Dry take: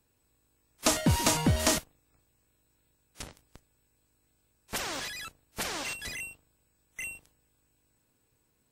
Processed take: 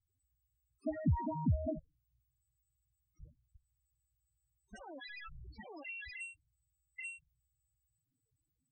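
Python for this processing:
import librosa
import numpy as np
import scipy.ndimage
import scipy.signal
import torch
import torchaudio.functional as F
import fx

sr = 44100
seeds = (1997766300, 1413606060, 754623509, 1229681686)

y = fx.delta_mod(x, sr, bps=32000, step_db=-34.0, at=(5.07, 6.14))
y = fx.spec_topn(y, sr, count=4)
y = y * 10.0 ** (-4.5 / 20.0)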